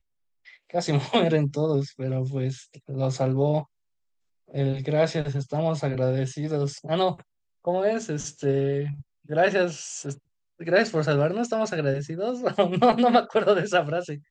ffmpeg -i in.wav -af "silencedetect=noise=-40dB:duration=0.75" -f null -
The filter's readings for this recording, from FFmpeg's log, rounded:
silence_start: 3.63
silence_end: 4.51 | silence_duration: 0.88